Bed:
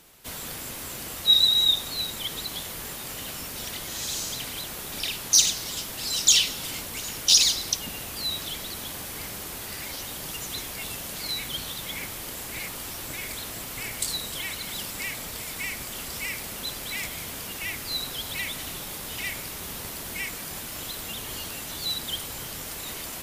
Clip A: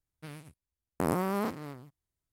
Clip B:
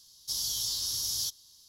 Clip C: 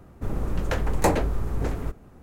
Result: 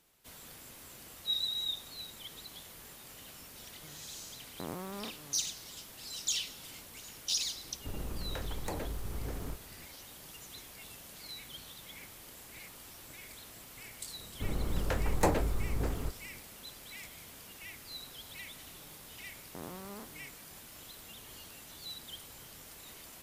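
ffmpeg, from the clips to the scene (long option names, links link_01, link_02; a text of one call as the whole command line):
ffmpeg -i bed.wav -i cue0.wav -i cue1.wav -i cue2.wav -filter_complex "[1:a]asplit=2[link_01][link_02];[3:a]asplit=2[link_03][link_04];[0:a]volume=-15dB[link_05];[link_03]acompressor=threshold=-26dB:ratio=6:attack=3.2:release=140:knee=1:detection=peak[link_06];[link_01]atrim=end=2.32,asetpts=PTS-STARTPTS,volume=-12dB,afade=type=in:duration=0.004:curve=hsin,afade=type=out:start_time=2.316:duration=0.004:curve=hsin,adelay=3600[link_07];[link_06]atrim=end=2.22,asetpts=PTS-STARTPTS,volume=-7.5dB,afade=type=in:duration=0.004:curve=hsin,afade=type=out:start_time=2.216:duration=0.004:curve=hsin,adelay=7640[link_08];[link_04]atrim=end=2.22,asetpts=PTS-STARTPTS,volume=-6.5dB,afade=type=in:duration=0.004:curve=hsin,afade=type=out:start_time=2.216:duration=0.004:curve=hsin,adelay=14190[link_09];[link_02]atrim=end=2.32,asetpts=PTS-STARTPTS,volume=-16dB,afade=type=in:duration=0.004:curve=hsin,afade=type=out:start_time=2.316:duration=0.004:curve=hsin,adelay=18550[link_10];[link_05][link_07][link_08][link_09][link_10]amix=inputs=5:normalize=0" out.wav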